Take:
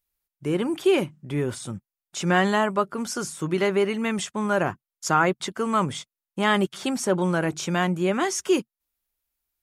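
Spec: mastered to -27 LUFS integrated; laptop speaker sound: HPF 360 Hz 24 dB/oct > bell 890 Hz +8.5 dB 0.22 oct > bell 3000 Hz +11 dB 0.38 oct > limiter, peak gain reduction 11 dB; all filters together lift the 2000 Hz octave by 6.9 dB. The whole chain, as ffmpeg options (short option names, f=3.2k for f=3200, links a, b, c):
-af "highpass=f=360:w=0.5412,highpass=f=360:w=1.3066,equalizer=f=890:t=o:w=0.22:g=8.5,equalizer=f=2k:t=o:g=7,equalizer=f=3k:t=o:w=0.38:g=11,volume=-0.5dB,alimiter=limit=-15dB:level=0:latency=1"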